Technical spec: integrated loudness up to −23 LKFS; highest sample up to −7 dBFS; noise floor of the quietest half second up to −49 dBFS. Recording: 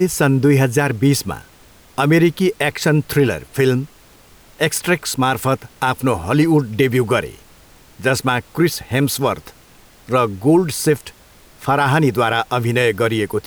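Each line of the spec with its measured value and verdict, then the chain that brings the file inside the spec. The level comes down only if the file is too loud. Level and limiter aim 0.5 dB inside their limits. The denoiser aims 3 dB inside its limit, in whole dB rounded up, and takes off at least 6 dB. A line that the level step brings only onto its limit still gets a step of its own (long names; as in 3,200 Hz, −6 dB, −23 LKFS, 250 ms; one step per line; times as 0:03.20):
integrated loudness −17.0 LKFS: out of spec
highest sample −4.5 dBFS: out of spec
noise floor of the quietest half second −47 dBFS: out of spec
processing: level −6.5 dB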